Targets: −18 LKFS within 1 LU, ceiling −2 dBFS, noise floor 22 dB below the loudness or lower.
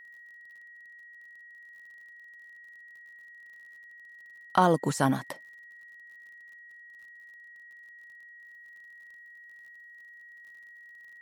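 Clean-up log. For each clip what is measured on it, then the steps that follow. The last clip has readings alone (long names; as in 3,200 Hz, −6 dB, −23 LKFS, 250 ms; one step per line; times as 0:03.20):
crackle rate 46 per second; interfering tone 1,900 Hz; level of the tone −48 dBFS; integrated loudness −27.0 LKFS; sample peak −7.5 dBFS; target loudness −18.0 LKFS
→ click removal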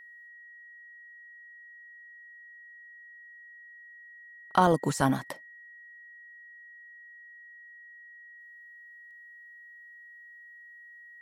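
crackle rate 0.089 per second; interfering tone 1,900 Hz; level of the tone −48 dBFS
→ notch filter 1,900 Hz, Q 30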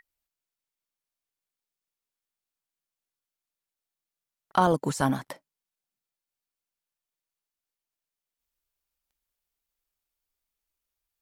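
interfering tone none found; integrated loudness −26.5 LKFS; sample peak −7.5 dBFS; target loudness −18.0 LKFS
→ level +8.5 dB
brickwall limiter −2 dBFS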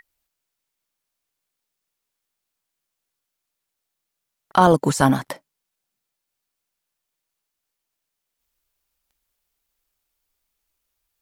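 integrated loudness −18.5 LKFS; sample peak −2.0 dBFS; background noise floor −82 dBFS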